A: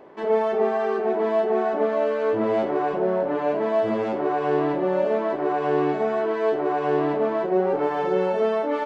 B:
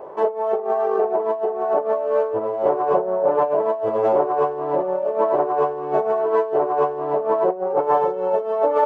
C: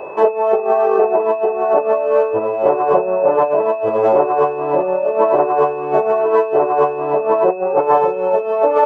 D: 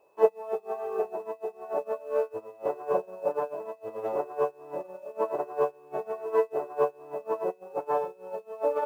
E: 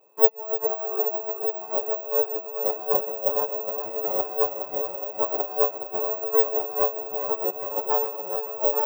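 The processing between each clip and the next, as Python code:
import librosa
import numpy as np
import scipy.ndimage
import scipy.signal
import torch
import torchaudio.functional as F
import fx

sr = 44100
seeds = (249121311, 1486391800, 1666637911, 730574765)

y1 = fx.over_compress(x, sr, threshold_db=-26.0, ratio=-0.5)
y1 = fx.graphic_eq(y1, sr, hz=(125, 250, 500, 1000, 2000, 4000), db=(3, -10, 10, 8, -7, -7))
y2 = fx.rider(y1, sr, range_db=10, speed_s=2.0)
y2 = y2 + 10.0 ** (-44.0 / 20.0) * np.sin(2.0 * np.pi * 2600.0 * np.arange(len(y2)) / sr)
y2 = y2 * 10.0 ** (5.0 / 20.0)
y3 = fx.quant_dither(y2, sr, seeds[0], bits=8, dither='triangular')
y3 = fx.comb_fb(y3, sr, f0_hz=64.0, decay_s=0.54, harmonics='odd', damping=0.0, mix_pct=70)
y3 = fx.upward_expand(y3, sr, threshold_db=-32.0, expansion=2.5)
y4 = fx.echo_thinned(y3, sr, ms=415, feedback_pct=75, hz=170.0, wet_db=-8.0)
y4 = (np.kron(scipy.signal.resample_poly(y4, 1, 2), np.eye(2)[0]) * 2)[:len(y4)]
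y4 = y4 * 10.0 ** (1.0 / 20.0)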